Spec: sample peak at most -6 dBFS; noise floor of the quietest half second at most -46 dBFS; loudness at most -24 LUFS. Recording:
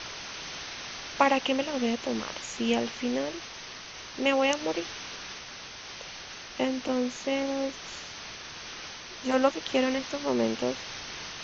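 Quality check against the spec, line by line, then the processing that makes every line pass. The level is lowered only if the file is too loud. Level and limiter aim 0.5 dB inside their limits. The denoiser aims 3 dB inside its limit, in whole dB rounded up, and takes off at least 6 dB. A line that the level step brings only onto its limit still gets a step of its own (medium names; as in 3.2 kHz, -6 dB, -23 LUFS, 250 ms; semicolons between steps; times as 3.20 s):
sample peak -8.0 dBFS: pass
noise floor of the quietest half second -43 dBFS: fail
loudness -30.5 LUFS: pass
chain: noise reduction 6 dB, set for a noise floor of -43 dBFS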